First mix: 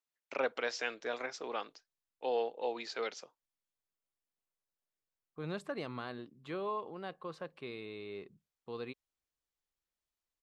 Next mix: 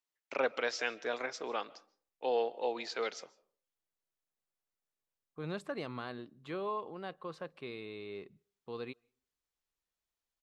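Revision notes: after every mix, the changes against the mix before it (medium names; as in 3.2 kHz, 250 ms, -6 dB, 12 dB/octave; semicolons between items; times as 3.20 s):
reverb: on, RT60 0.45 s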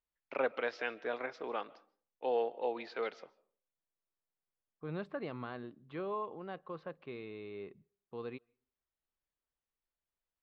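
second voice: entry -0.55 s; master: add distance through air 310 m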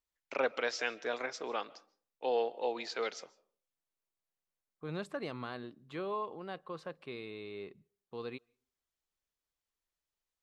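master: remove distance through air 310 m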